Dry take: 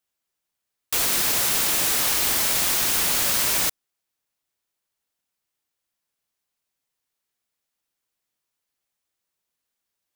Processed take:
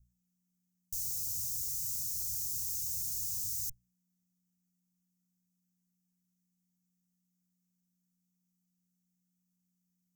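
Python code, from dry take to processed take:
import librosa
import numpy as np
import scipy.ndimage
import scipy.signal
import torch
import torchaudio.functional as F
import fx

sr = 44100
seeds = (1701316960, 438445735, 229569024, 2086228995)

y = fx.graphic_eq_15(x, sr, hz=(100, 250, 2500, 10000), db=(6, -10, 5, -6))
y = fx.tube_stage(y, sr, drive_db=34.0, bias=0.65)
y = fx.add_hum(y, sr, base_hz=60, snr_db=22)
y = scipy.signal.sosfilt(scipy.signal.ellip(3, 1.0, 40, [140.0, 6100.0], 'bandstop', fs=sr, output='sos'), y)
y = fx.hum_notches(y, sr, base_hz=60, count=2)
y = F.gain(torch.from_numpy(y), 2.0).numpy()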